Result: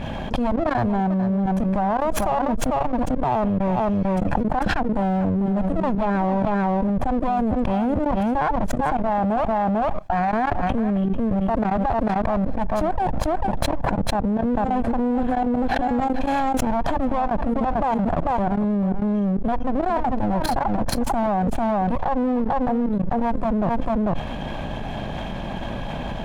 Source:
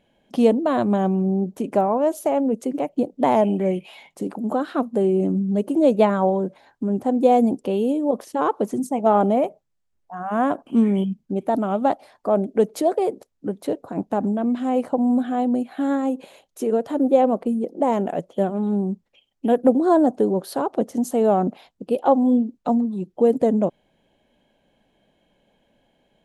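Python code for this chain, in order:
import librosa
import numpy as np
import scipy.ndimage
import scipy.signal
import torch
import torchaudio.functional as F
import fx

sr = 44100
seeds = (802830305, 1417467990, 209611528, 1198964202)

y = fx.lower_of_two(x, sr, delay_ms=1.2)
y = fx.lowpass(y, sr, hz=1800.0, slope=6)
y = fx.low_shelf(y, sr, hz=140.0, db=7.5)
y = fx.level_steps(y, sr, step_db=23)
y = y + 10.0 ** (-11.0 / 20.0) * np.pad(y, (int(445 * sr / 1000.0), 0))[:len(y)]
y = fx.env_flatten(y, sr, amount_pct=100)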